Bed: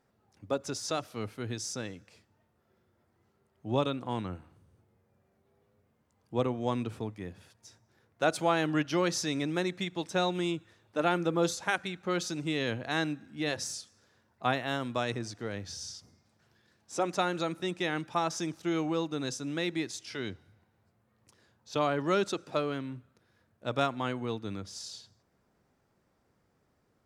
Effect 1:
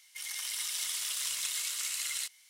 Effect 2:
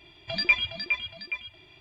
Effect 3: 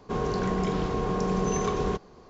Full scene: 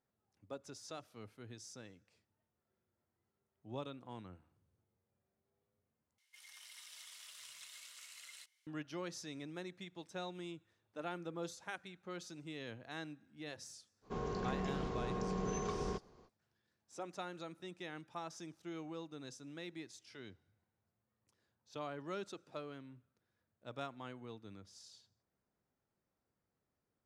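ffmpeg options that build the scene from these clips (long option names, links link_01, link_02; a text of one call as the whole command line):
ffmpeg -i bed.wav -i cue0.wav -i cue1.wav -i cue2.wav -filter_complex "[0:a]volume=-15.5dB[link_01];[1:a]highshelf=frequency=5600:gain=-10.5[link_02];[link_01]asplit=2[link_03][link_04];[link_03]atrim=end=6.184[link_05];[link_02]atrim=end=2.49,asetpts=PTS-STARTPTS,volume=-14.5dB[link_06];[link_04]atrim=start=8.666[link_07];[3:a]atrim=end=2.29,asetpts=PTS-STARTPTS,volume=-12dB,afade=type=in:duration=0.05,afade=type=out:start_time=2.24:duration=0.05,adelay=14010[link_08];[link_05][link_06]acrossfade=duration=0.004:curve1=hsin:curve2=hsin[link_09];[link_09][link_07]acrossfade=duration=0.004:curve1=hsin:curve2=hsin[link_10];[link_10][link_08]amix=inputs=2:normalize=0" out.wav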